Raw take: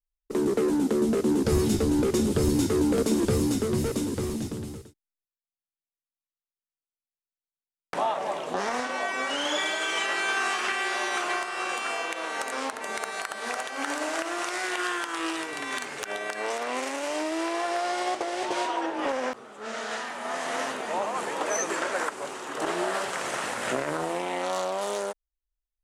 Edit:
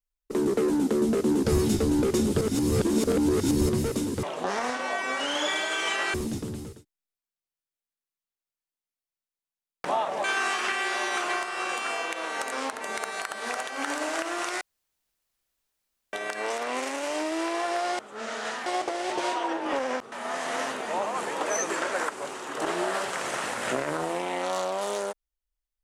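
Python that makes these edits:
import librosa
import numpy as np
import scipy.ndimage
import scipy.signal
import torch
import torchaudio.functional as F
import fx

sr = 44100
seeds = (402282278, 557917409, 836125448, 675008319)

y = fx.edit(x, sr, fx.reverse_span(start_s=2.41, length_s=1.28),
    fx.move(start_s=8.33, length_s=1.91, to_s=4.23),
    fx.room_tone_fill(start_s=14.61, length_s=1.52),
    fx.move(start_s=19.45, length_s=0.67, to_s=17.99), tone=tone)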